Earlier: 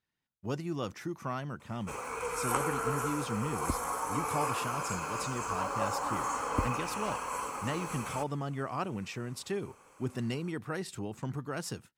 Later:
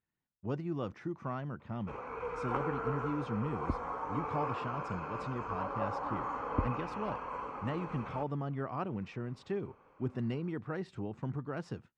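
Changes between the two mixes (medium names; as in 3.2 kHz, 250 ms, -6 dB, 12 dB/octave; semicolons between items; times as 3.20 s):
background: add distance through air 130 m; master: add tape spacing loss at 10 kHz 31 dB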